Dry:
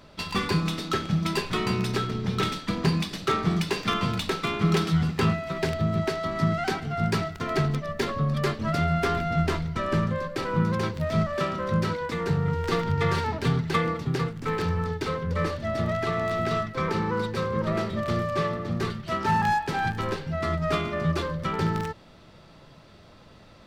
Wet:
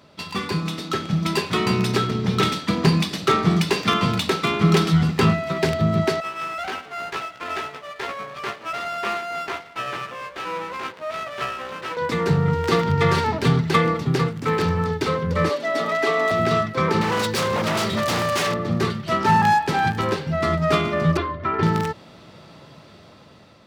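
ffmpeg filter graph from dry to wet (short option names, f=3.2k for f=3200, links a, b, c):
-filter_complex "[0:a]asettb=1/sr,asplit=3[a][b][c];[a]atrim=end=6.204[d];[b]atrim=start=6.2:end=11.97,asetpts=PTS-STARTPTS,afade=t=in:d=0.004:c=qsin,afade=t=out:st=5.766:d=0.004:c=qsin,highpass=710,lowpass=2.3k,asplit=2[e][f];[f]adelay=16,volume=-2.5dB[g];[e][g]amix=inputs=2:normalize=0,atrim=end_sample=254457,aeval=exprs='max(val(0),0)':c=same[h];[c]atrim=start=11.966[i];[d][h]acrossfade=d=0.004:c1=hsin:c2=qsin[j];[j][i]acrossfade=d=0.004:c1=qsin:c2=hsin,asettb=1/sr,asplit=3[k][l][m];[k]atrim=end=15.494[n];[l]atrim=start=15.49:end=16.31,asetpts=PTS-STARTPTS,afade=t=in:d=0.004:c=qsin,afade=t=out:st=0.816:d=0.004:c=qsin,highpass=f=270:w=0.5412,highpass=f=270:w=1.3066,aecho=1:1:7.1:0.79,atrim=end_sample=36162[o];[m]atrim=start=16.306[p];[n][o]acrossfade=d=0.004:c1=hsin:c2=qsin[q];[q][p]acrossfade=d=0.004:c1=qsin:c2=hsin,asettb=1/sr,asplit=3[r][s][t];[r]atrim=end=17.014[u];[s]atrim=start=17.01:end=18.54,asetpts=PTS-STARTPTS,afade=t=in:d=0.004:c=qsin,afade=t=out:st=1.526:d=0.004:c=qsin,highshelf=f=2.2k:g=11.5,aeval=exprs='0.0668*(abs(mod(val(0)/0.0668+3,4)-2)-1)':c=same[v];[t]atrim=start=18.536[w];[u][v]acrossfade=d=0.004:c1=hsin:c2=qsin[x];[x][w]acrossfade=d=0.004:c1=qsin:c2=hsin,asettb=1/sr,asplit=3[y][z][aa];[y]atrim=end=21.174[ab];[z]atrim=start=21.17:end=21.63,asetpts=PTS-STARTPTS,afade=t=in:d=0.004:c=qsin,afade=t=out:st=0.456:d=0.004:c=qsin,lowpass=1.9k,equalizer=f=350:w=0.48:g=-5,aecho=1:1:2.9:0.83,atrim=end_sample=20286[ac];[aa]atrim=start=21.626[ad];[ab][ac]acrossfade=d=0.004:c1=hsin:c2=qsin[ae];[ae][ad]acrossfade=d=0.004:c1=qsin:c2=hsin,highpass=100,equalizer=f=1.6k:w=5.6:g=-2,dynaudnorm=f=500:g=5:m=7dB"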